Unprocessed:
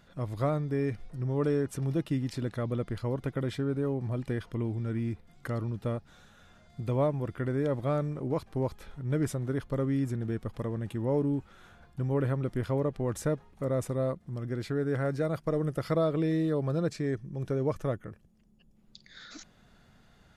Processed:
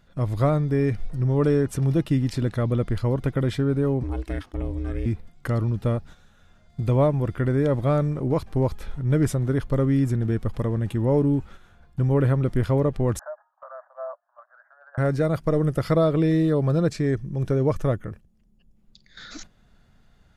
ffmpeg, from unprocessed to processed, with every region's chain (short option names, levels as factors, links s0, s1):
-filter_complex "[0:a]asettb=1/sr,asplit=3[s0][s1][s2];[s0]atrim=end=4.034[s3];[s1]atrim=start=4.03:end=5.06,asetpts=PTS-STARTPTS,afade=t=in:d=0.004:c=qsin,afade=t=out:st=1.026:d=0.004:c=qsin,highpass=61,equalizer=f=290:w=0.67:g=-6,aeval=exprs='val(0)*sin(2*PI*190*n/s)':c=same[s4];[s2]atrim=start=5.056[s5];[s3][s4]acrossfade=d=0.004:c1=hsin:c2=qsin[s6];[s6][s5]acrossfade=d=0.004:c1=qsin:c2=hsin,asettb=1/sr,asplit=3[s7][s8][s9];[s7]atrim=end=13.194[s10];[s8]atrim=start=13.19:end=14.98,asetpts=PTS-STARTPTS,afade=t=in:d=0.004:c=qsin,afade=t=out:st=1.786:d=0.004:c=qsin,acompressor=threshold=0.0316:ratio=5:attack=3.2:release=140:knee=1:detection=peak,aphaser=in_gain=1:out_gain=1:delay=1:decay=0.36:speed=1.2:type=triangular,asuperpass=centerf=1000:order=20:qfactor=0.9[s11];[s9]atrim=start=14.976[s12];[s10][s11]acrossfade=d=0.004:c1=hsin:c2=qsin[s13];[s13][s12]acrossfade=d=0.004:c1=qsin:c2=hsin,agate=range=0.355:threshold=0.00316:ratio=16:detection=peak,lowshelf=f=82:g=10.5,volume=2.11"